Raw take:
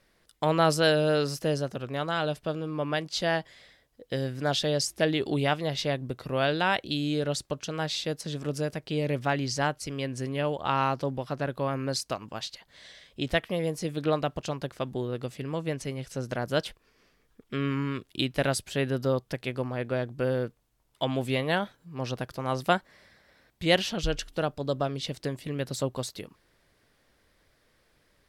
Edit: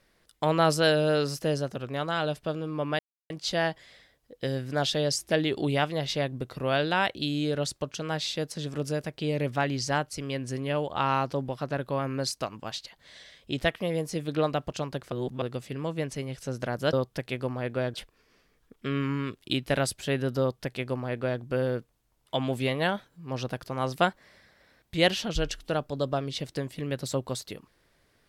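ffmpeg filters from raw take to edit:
ffmpeg -i in.wav -filter_complex "[0:a]asplit=6[link_01][link_02][link_03][link_04][link_05][link_06];[link_01]atrim=end=2.99,asetpts=PTS-STARTPTS,afade=type=out:start_time=2.986:duration=0.004:curve=hsin,apad=pad_dur=0.31[link_07];[link_02]atrim=start=2.99:end=14.812,asetpts=PTS-STARTPTS,afade=type=in:duration=0.004:curve=hsin[link_08];[link_03]atrim=start=14.808:end=15.112,asetpts=PTS-STARTPTS,areverse[link_09];[link_04]atrim=start=15.108:end=16.622[link_10];[link_05]atrim=start=19.078:end=20.092[link_11];[link_06]atrim=start=16.618[link_12];[link_07][link_08]concat=n=2:v=0:a=1[link_13];[link_13][link_09]acrossfade=duration=0.004:curve1=hsin:curve2=hsin[link_14];[link_14][link_10]acrossfade=duration=0.004:curve1=hsin:curve2=hsin[link_15];[link_15][link_11]acrossfade=duration=0.004:curve1=hsin:curve2=hsin[link_16];[link_16][link_12]acrossfade=duration=0.004:curve1=hsin:curve2=hsin" out.wav

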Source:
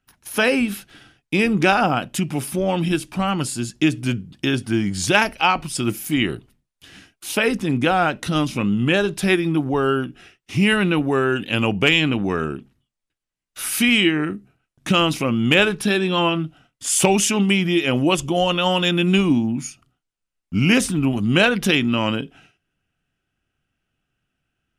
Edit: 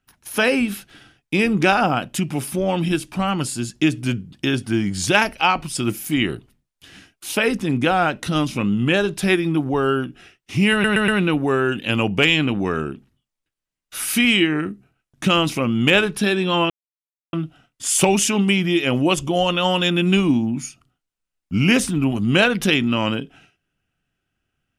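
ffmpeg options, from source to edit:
ffmpeg -i in.wav -filter_complex "[0:a]asplit=5[link_01][link_02][link_03][link_04][link_05];[link_01]atrim=end=10.842[link_06];[link_02]atrim=start=10.718:end=10.842[link_07];[link_03]atrim=start=10.718:end=10.842[link_08];[link_04]atrim=start=10.718:end=16.34,asetpts=PTS-STARTPTS,afade=type=out:start_time=5.618:duration=0.004:curve=hsin,apad=pad_dur=0.63[link_09];[link_05]atrim=start=16.34,asetpts=PTS-STARTPTS,afade=type=in:duration=0.004:curve=hsin[link_10];[link_06][link_07]acrossfade=duration=0.004:curve1=hsin:curve2=hsin[link_11];[link_11][link_08]acrossfade=duration=0.004:curve1=hsin:curve2=hsin[link_12];[link_09][link_10]concat=n=2:v=0:a=1[link_13];[link_12][link_13]acrossfade=duration=0.004:curve1=hsin:curve2=hsin" out.wav

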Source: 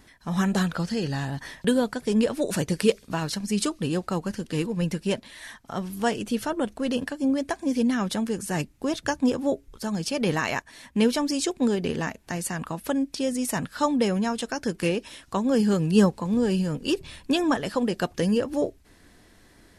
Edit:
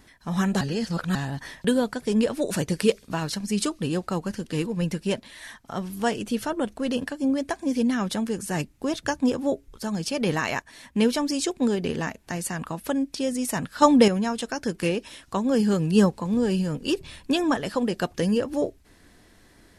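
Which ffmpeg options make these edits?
ffmpeg -i in.wav -filter_complex "[0:a]asplit=5[link_01][link_02][link_03][link_04][link_05];[link_01]atrim=end=0.612[link_06];[link_02]atrim=start=0.608:end=1.152,asetpts=PTS-STARTPTS,areverse[link_07];[link_03]atrim=start=1.148:end=13.822[link_08];[link_04]atrim=start=13.818:end=14.082,asetpts=PTS-STARTPTS,volume=7dB[link_09];[link_05]atrim=start=14.078[link_10];[link_06][link_07]acrossfade=duration=0.004:curve1=hsin:curve2=hsin[link_11];[link_11][link_08]acrossfade=duration=0.004:curve1=hsin:curve2=hsin[link_12];[link_12][link_09]acrossfade=duration=0.004:curve1=hsin:curve2=hsin[link_13];[link_13][link_10]acrossfade=duration=0.004:curve1=hsin:curve2=hsin" out.wav

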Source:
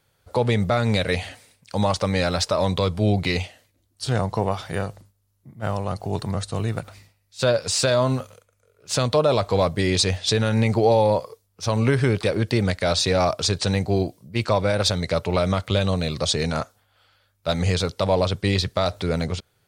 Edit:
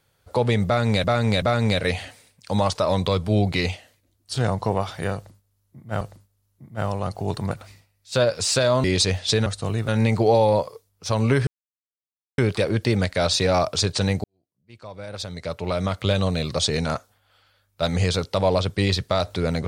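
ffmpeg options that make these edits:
ffmpeg -i in.wav -filter_complex "[0:a]asplit=11[link_01][link_02][link_03][link_04][link_05][link_06][link_07][link_08][link_09][link_10][link_11];[link_01]atrim=end=1.042[link_12];[link_02]atrim=start=0.658:end=1.042[link_13];[link_03]atrim=start=0.658:end=1.992[link_14];[link_04]atrim=start=2.458:end=5.722[link_15];[link_05]atrim=start=4.858:end=6.362[link_16];[link_06]atrim=start=6.778:end=8.112[link_17];[link_07]atrim=start=9.828:end=10.452[link_18];[link_08]atrim=start=6.358:end=6.782[link_19];[link_09]atrim=start=10.448:end=12.04,asetpts=PTS-STARTPTS,afade=type=out:start_time=1.588:duration=0.004:curve=hsin,apad=pad_dur=0.91[link_20];[link_10]atrim=start=12.04:end=13.9,asetpts=PTS-STARTPTS,afade=type=in:duration=0.004:curve=hsin,afade=type=out:start_time=1.856:duration=0.004:curve=hsin[link_21];[link_11]atrim=start=13.9,asetpts=PTS-STARTPTS,afade=type=in:duration=1.87:curve=qua[link_22];[link_12][link_13]acrossfade=duration=0.004:curve1=hsin:curve2=hsin[link_23];[link_23][link_14]acrossfade=duration=0.004:curve1=hsin:curve2=hsin[link_24];[link_24][link_15]acrossfade=duration=0.004:curve1=hsin:curve2=hsin[link_25];[link_25][link_16]acrossfade=duration=0.004:curve1=hsin:curve2=hsin[link_26];[link_26][link_17]acrossfade=duration=0.004:curve1=hsin:curve2=hsin[link_27];[link_27][link_18]acrossfade=duration=0.004:curve1=hsin:curve2=hsin[link_28];[link_28][link_19]acrossfade=duration=0.004:curve1=hsin:curve2=hsin[link_29];[link_20][link_21][link_22]concat=n=3:v=0:a=1[link_30];[link_29][link_30]acrossfade=duration=0.004:curve1=hsin:curve2=hsin" out.wav

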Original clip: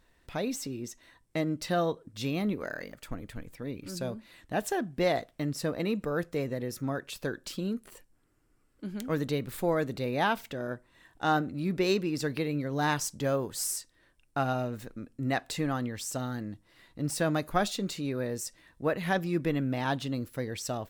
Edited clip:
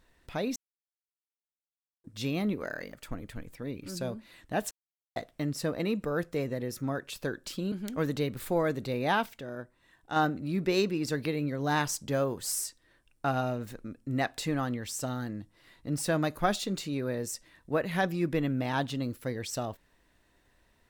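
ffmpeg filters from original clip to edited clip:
ffmpeg -i in.wav -filter_complex "[0:a]asplit=8[link_01][link_02][link_03][link_04][link_05][link_06][link_07][link_08];[link_01]atrim=end=0.56,asetpts=PTS-STARTPTS,afade=type=out:start_time=0.556:duration=0.004:curve=hsin[link_09];[link_02]atrim=start=0.56:end=2.04,asetpts=PTS-STARTPTS,volume=0[link_10];[link_03]atrim=start=2.04:end=4.71,asetpts=PTS-STARTPTS,afade=type=in:duration=0.004:curve=hsin,afade=type=out:start_time=2.666:duration=0.004:curve=hsin[link_11];[link_04]atrim=start=4.71:end=5.16,asetpts=PTS-STARTPTS,volume=0[link_12];[link_05]atrim=start=5.16:end=7.722,asetpts=PTS-STARTPTS,afade=type=in:duration=0.004:curve=hsin[link_13];[link_06]atrim=start=8.838:end=10.382[link_14];[link_07]atrim=start=10.378:end=11.282,asetpts=PTS-STARTPTS,volume=-4.5dB[link_15];[link_08]atrim=start=11.278[link_16];[link_09][link_10][link_11][link_12][link_13]concat=n=5:v=0:a=1[link_17];[link_17][link_14]acrossfade=duration=0.004:curve1=hsin:curve2=hsin[link_18];[link_18][link_15]acrossfade=duration=0.004:curve1=hsin:curve2=hsin[link_19];[link_19][link_16]acrossfade=duration=0.004:curve1=hsin:curve2=hsin" out.wav

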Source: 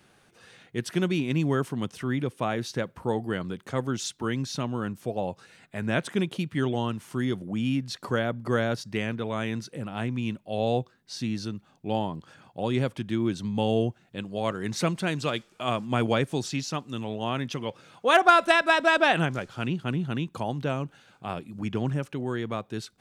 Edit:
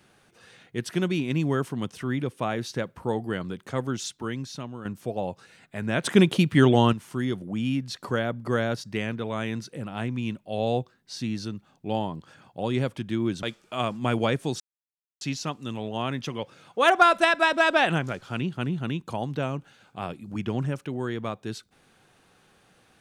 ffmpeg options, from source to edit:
ffmpeg -i in.wav -filter_complex "[0:a]asplit=6[link_01][link_02][link_03][link_04][link_05][link_06];[link_01]atrim=end=4.85,asetpts=PTS-STARTPTS,afade=type=out:start_time=3.89:duration=0.96:silence=0.334965[link_07];[link_02]atrim=start=4.85:end=6.042,asetpts=PTS-STARTPTS,afade=type=in:duration=0.004:curve=hsin:silence=0.334965[link_08];[link_03]atrim=start=6.038:end=6.932,asetpts=PTS-STARTPTS,volume=9dB[link_09];[link_04]atrim=start=6.928:end=13.432[link_10];[link_05]atrim=start=15.308:end=16.48,asetpts=PTS-STARTPTS,afade=type=out:start_time=1.168:duration=0.004:curve=hsin,apad=pad_dur=0.61[link_11];[link_06]atrim=start=16.48,asetpts=PTS-STARTPTS,afade=type=in:duration=0.004:curve=hsin[link_12];[link_07][link_08]concat=n=2:v=0:a=1[link_13];[link_13][link_09]acrossfade=duration=0.004:curve1=hsin:curve2=hsin[link_14];[link_14][link_10]acrossfade=duration=0.004:curve1=hsin:curve2=hsin[link_15];[link_11][link_12]concat=n=2:v=0:a=1[link_16];[link_15][link_16]acrossfade=duration=0.004:curve1=hsin:curve2=hsin" out.wav

